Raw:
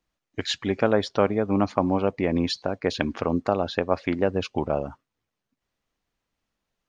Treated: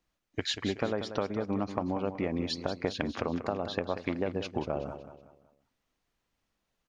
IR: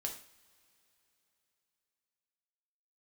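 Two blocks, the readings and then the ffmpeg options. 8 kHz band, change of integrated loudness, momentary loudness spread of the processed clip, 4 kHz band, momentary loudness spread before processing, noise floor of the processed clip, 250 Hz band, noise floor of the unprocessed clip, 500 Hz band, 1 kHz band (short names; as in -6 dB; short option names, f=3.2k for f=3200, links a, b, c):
-5.0 dB, -8.0 dB, 4 LU, -5.0 dB, 6 LU, -82 dBFS, -8.0 dB, -84 dBFS, -8.5 dB, -8.5 dB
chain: -af "acompressor=threshold=-28dB:ratio=6,aecho=1:1:187|374|561|748:0.299|0.116|0.0454|0.0177"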